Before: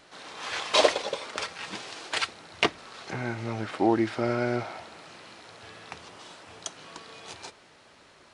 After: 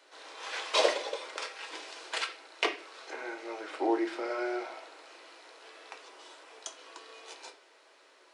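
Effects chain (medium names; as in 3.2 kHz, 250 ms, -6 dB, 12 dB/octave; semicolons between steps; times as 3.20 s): steep high-pass 310 Hz 48 dB/octave; reverberation RT60 0.45 s, pre-delay 6 ms, DRR 4 dB; trim -6 dB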